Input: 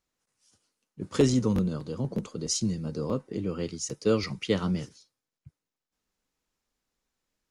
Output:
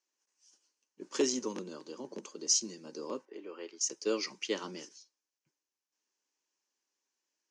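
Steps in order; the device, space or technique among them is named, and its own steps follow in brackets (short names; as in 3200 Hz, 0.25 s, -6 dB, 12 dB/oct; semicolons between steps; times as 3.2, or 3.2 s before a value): 3.25–3.81 three-band isolator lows -16 dB, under 370 Hz, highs -17 dB, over 3100 Hz; phone speaker on a table (speaker cabinet 350–7200 Hz, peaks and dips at 480 Hz -9 dB, 700 Hz -10 dB, 1300 Hz -9 dB, 2100 Hz -5 dB, 3700 Hz -7 dB, 6100 Hz +6 dB)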